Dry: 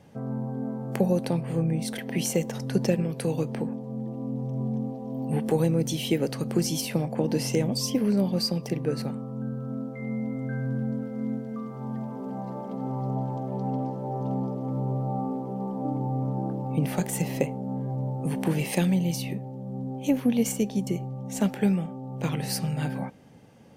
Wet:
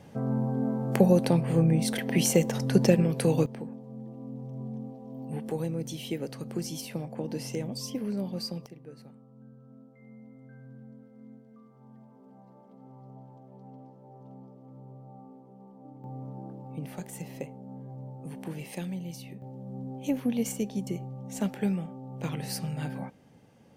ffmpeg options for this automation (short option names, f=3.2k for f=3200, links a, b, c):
-af "asetnsamples=n=441:p=0,asendcmd='3.46 volume volume -8.5dB;8.66 volume volume -19.5dB;16.04 volume volume -12dB;19.42 volume volume -5dB',volume=3dB"